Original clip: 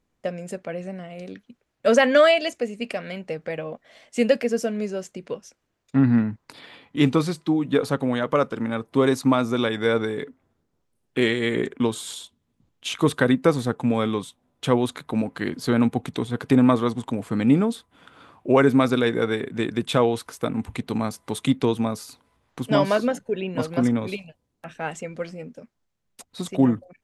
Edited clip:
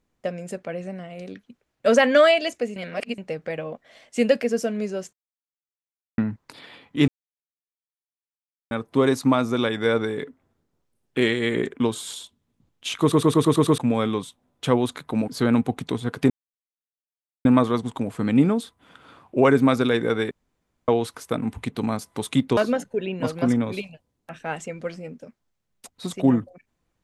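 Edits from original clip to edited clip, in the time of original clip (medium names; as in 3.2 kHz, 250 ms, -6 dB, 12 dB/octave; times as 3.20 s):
2.76–3.18 s: reverse
5.13–6.18 s: mute
7.08–8.71 s: mute
13.01 s: stutter in place 0.11 s, 7 plays
15.28–15.55 s: delete
16.57 s: insert silence 1.15 s
19.43–20.00 s: room tone
21.69–22.92 s: delete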